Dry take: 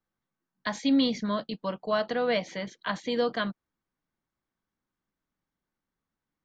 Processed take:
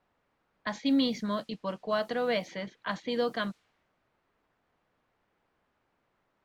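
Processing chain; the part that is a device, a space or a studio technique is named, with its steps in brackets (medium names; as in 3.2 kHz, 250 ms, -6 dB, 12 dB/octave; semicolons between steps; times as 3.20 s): cassette deck with a dynamic noise filter (white noise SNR 30 dB; level-controlled noise filter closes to 1.3 kHz, open at -24 dBFS); trim -2.5 dB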